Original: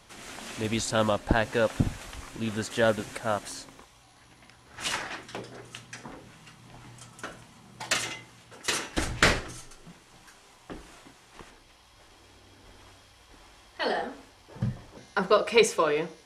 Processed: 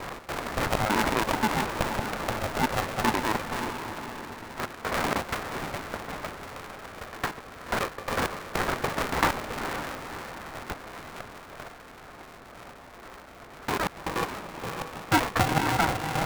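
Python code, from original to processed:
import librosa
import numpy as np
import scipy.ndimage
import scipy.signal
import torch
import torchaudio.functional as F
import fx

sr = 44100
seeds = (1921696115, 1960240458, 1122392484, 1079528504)

p1 = fx.block_reorder(x, sr, ms=95.0, group=3)
p2 = scipy.signal.sosfilt(scipy.signal.butter(2, 850.0, 'highpass', fs=sr, output='sos'), p1)
p3 = fx.tilt_shelf(p2, sr, db=7.0, hz=1200.0)
p4 = fx.notch(p3, sr, hz=1600.0, q=7.0)
p5 = fx.over_compress(p4, sr, threshold_db=-38.0, ratio=-0.5)
p6 = p4 + (p5 * librosa.db_to_amplitude(1.5))
p7 = fx.sample_hold(p6, sr, seeds[0], rate_hz=2900.0, jitter_pct=0)
p8 = fx.air_absorb(p7, sr, metres=400.0)
p9 = fx.echo_diffused(p8, sr, ms=527, feedback_pct=52, wet_db=-8.0)
p10 = p9 * np.sign(np.sin(2.0 * np.pi * 320.0 * np.arange(len(p9)) / sr))
y = p10 * librosa.db_to_amplitude(4.5)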